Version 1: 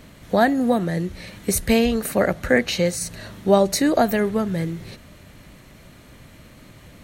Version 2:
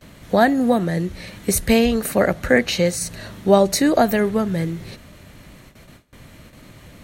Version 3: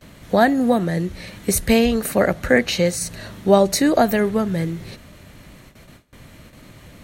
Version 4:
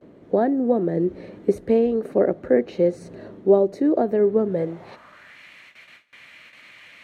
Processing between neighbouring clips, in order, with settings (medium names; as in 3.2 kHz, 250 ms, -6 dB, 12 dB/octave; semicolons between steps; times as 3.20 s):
gate with hold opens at -36 dBFS; trim +2 dB
no audible change
gain riding within 5 dB 0.5 s; band-pass sweep 380 Hz -> 2.3 kHz, 4.44–5.42 s; trim +4.5 dB